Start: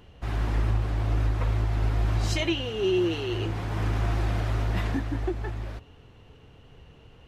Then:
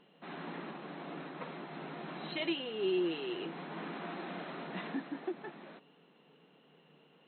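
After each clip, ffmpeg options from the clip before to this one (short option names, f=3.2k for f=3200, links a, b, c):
-af "afftfilt=real='re*between(b*sr/4096,140,4200)':imag='im*between(b*sr/4096,140,4200)':win_size=4096:overlap=0.75,volume=-7.5dB"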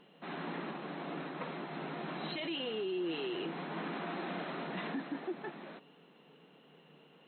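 -af "alimiter=level_in=9dB:limit=-24dB:level=0:latency=1:release=17,volume=-9dB,volume=3dB"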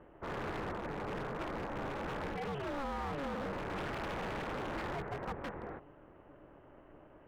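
-af "lowpass=f=1.7k:w=0.5412,lowpass=f=1.7k:w=1.3066,aeval=exprs='val(0)*sin(2*PI*140*n/s)':c=same,aeval=exprs='0.01*(abs(mod(val(0)/0.01+3,4)-2)-1)':c=same,volume=7.5dB"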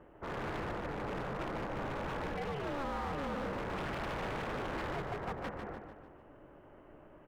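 -af "aecho=1:1:148|296|444|592|740:0.447|0.197|0.0865|0.0381|0.0167"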